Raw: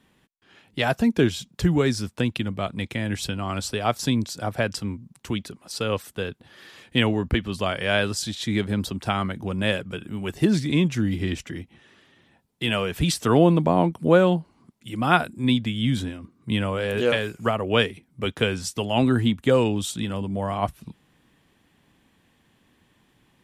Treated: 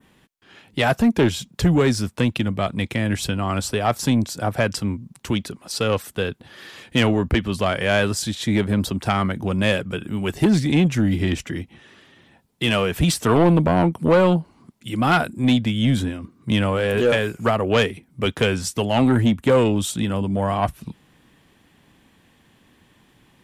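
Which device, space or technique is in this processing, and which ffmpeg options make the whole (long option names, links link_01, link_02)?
saturation between pre-emphasis and de-emphasis: -af "adynamicequalizer=threshold=0.00708:dfrequency=4300:dqfactor=0.89:tfrequency=4300:tqfactor=0.89:attack=5:release=100:ratio=0.375:range=2.5:mode=cutabove:tftype=bell,highshelf=frequency=6900:gain=8.5,asoftclip=type=tanh:threshold=-16dB,highshelf=frequency=6900:gain=-8.5,volume=6dB"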